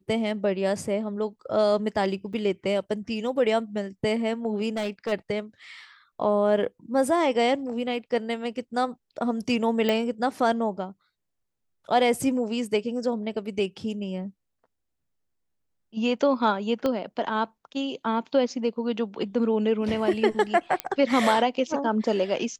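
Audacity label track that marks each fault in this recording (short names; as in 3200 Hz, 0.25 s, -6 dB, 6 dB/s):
2.330000	2.340000	gap 5.1 ms
4.690000	5.130000	clipped -24.5 dBFS
9.890000	9.890000	pop -12 dBFS
16.860000	16.860000	pop -14 dBFS
20.800000	20.800000	pop -10 dBFS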